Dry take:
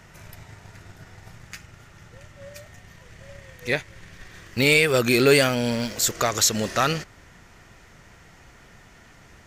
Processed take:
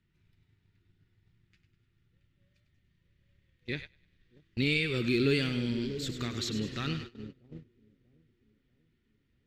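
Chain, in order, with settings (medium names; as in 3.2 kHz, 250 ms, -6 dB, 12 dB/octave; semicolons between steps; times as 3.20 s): FFT filter 350 Hz 0 dB, 630 Hz -21 dB, 3.7 kHz 0 dB, 6.6 kHz -9 dB, 12 kHz -23 dB; two-band feedback delay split 590 Hz, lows 639 ms, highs 100 ms, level -9.5 dB; gate -35 dBFS, range -17 dB; peaking EQ 6.2 kHz -9 dB 0.84 oct; trim -6 dB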